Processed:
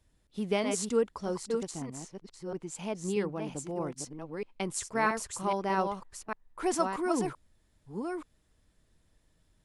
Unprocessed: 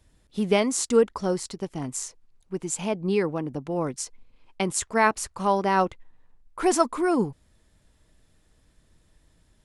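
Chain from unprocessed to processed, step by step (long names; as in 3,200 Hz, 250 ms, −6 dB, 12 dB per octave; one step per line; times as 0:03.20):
delay that plays each chunk backwards 633 ms, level −5 dB
0:01.71–0:02.75: low-pass filter 3,800 Hz 6 dB per octave
level −8 dB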